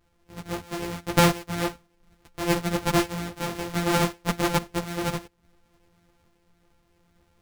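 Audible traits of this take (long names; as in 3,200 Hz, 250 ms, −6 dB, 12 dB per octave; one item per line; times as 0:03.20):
a buzz of ramps at a fixed pitch in blocks of 256 samples
sample-and-hold tremolo 3.5 Hz
a shimmering, thickened sound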